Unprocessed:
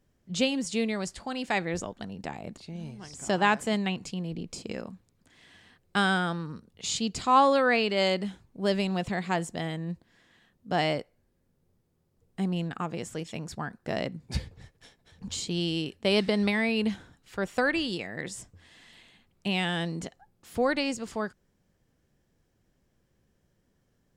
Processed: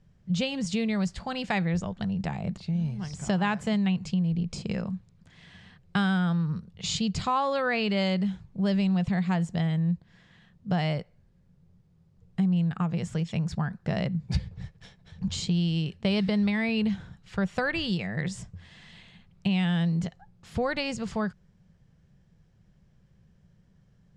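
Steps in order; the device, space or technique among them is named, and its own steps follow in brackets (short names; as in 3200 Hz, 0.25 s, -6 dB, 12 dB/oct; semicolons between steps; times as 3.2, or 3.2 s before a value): jukebox (LPF 5900 Hz 12 dB/oct; resonant low shelf 220 Hz +6.5 dB, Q 3; compressor 3:1, threshold -28 dBFS, peak gain reduction 9.5 dB); gain +3 dB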